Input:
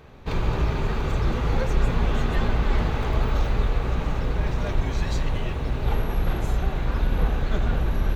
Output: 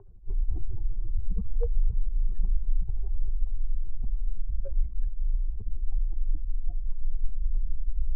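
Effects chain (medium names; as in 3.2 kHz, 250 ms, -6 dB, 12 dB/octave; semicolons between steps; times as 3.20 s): spectral contrast enhancement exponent 3.6; frequency shift -52 Hz; LFO low-pass saw up 4.9 Hz 880–3300 Hz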